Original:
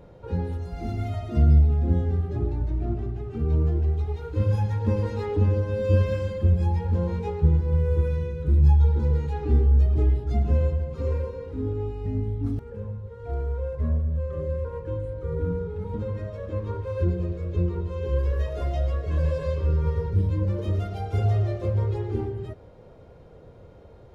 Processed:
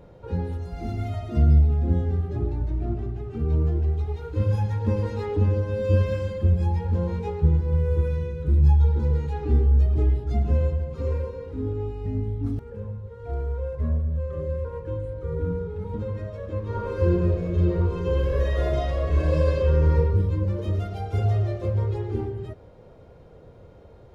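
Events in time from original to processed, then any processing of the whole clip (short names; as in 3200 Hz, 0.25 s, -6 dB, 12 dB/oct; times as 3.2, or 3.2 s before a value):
16.66–19.95 reverb throw, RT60 1.2 s, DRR -5 dB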